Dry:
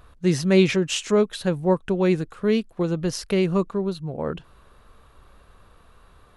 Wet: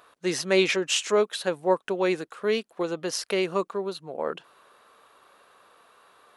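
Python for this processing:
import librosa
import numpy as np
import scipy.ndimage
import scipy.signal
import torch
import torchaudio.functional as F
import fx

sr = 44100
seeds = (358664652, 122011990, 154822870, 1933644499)

y = scipy.signal.sosfilt(scipy.signal.butter(2, 460.0, 'highpass', fs=sr, output='sos'), x)
y = y * 10.0 ** (1.5 / 20.0)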